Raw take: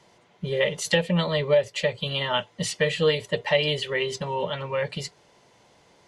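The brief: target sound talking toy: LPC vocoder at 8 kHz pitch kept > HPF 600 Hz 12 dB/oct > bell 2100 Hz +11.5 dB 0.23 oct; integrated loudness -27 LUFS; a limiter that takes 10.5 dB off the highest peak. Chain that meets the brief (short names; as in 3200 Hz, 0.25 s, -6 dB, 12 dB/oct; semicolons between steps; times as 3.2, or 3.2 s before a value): limiter -20.5 dBFS; LPC vocoder at 8 kHz pitch kept; HPF 600 Hz 12 dB/oct; bell 2100 Hz +11.5 dB 0.23 oct; gain +4 dB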